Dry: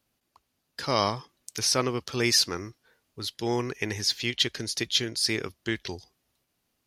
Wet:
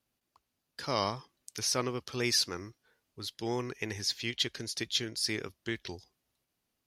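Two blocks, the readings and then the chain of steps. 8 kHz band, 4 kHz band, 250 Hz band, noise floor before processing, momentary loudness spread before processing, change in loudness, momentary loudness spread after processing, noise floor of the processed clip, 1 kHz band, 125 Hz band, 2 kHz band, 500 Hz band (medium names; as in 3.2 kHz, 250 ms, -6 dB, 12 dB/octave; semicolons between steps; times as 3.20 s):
-6.0 dB, -6.0 dB, -6.0 dB, -78 dBFS, 15 LU, -6.0 dB, 15 LU, -84 dBFS, -6.0 dB, -6.0 dB, -6.0 dB, -6.0 dB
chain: vibrato 3.7 Hz 42 cents; trim -6 dB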